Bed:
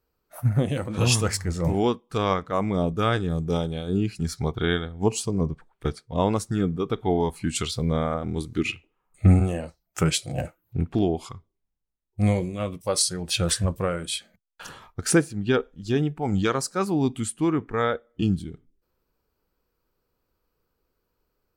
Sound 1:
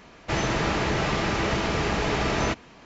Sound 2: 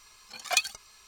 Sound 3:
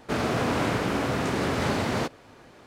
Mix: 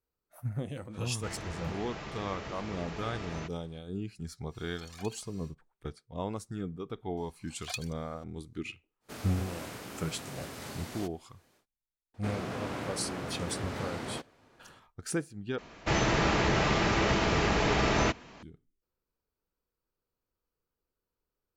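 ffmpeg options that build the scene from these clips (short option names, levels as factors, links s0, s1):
-filter_complex "[1:a]asplit=2[s0][s1];[2:a]asplit=2[s2][s3];[3:a]asplit=2[s4][s5];[0:a]volume=0.224[s6];[s2]acompressor=threshold=0.00891:ratio=5:attack=1.2:release=35:knee=1:detection=rms[s7];[s4]aemphasis=mode=production:type=75fm[s8];[s6]asplit=2[s9][s10];[s9]atrim=end=15.584[s11];[s1]atrim=end=2.85,asetpts=PTS-STARTPTS,volume=0.841[s12];[s10]atrim=start=18.426[s13];[s0]atrim=end=2.85,asetpts=PTS-STARTPTS,volume=0.15,afade=t=in:d=0.004:c=hsin,afade=t=out:st=2.846:d=0.004:c=hsin,adelay=940[s14];[s7]atrim=end=1.07,asetpts=PTS-STARTPTS,volume=0.562,afade=t=in:d=0.1,afade=t=out:st=0.97:d=0.1,adelay=4480[s15];[s3]atrim=end=1.07,asetpts=PTS-STARTPTS,volume=0.224,afade=t=in:d=0.004:c=hsin,afade=t=out:st=1.066:d=0.004:c=hsin,adelay=7170[s16];[s8]atrim=end=2.66,asetpts=PTS-STARTPTS,volume=0.133,afade=t=in:d=0.1,afade=t=out:st=2.56:d=0.1,adelay=9000[s17];[s5]atrim=end=2.66,asetpts=PTS-STARTPTS,volume=0.266,afade=t=in:d=0.004:c=hsin,afade=t=out:st=2.656:d=0.004:c=hsin,adelay=12140[s18];[s11][s12]acrossfade=d=0.004:c1=hsin:c2=hsin[s19];[s19][s13]acrossfade=d=0.004:c1=hsin:c2=hsin[s20];[s20][s14][s15][s16][s17][s18]amix=inputs=6:normalize=0"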